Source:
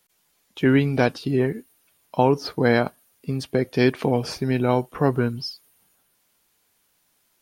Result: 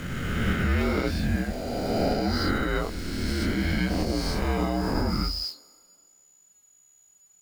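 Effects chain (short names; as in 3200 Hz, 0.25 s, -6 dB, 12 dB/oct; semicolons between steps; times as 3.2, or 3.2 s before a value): spectral swells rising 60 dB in 2.70 s; in parallel at -5.5 dB: bit-crush 5-bit; on the sum: limiter -5.5 dBFS, peak gain reduction 7.5 dB; on a send at -20.5 dB: HPF 580 Hz 24 dB/oct + reverb RT60 2.2 s, pre-delay 41 ms; on the sum: frequency shift -190 Hz; whine 6900 Hz -47 dBFS; chorus 0.76 Hz, depth 4.3 ms; gain -6.5 dB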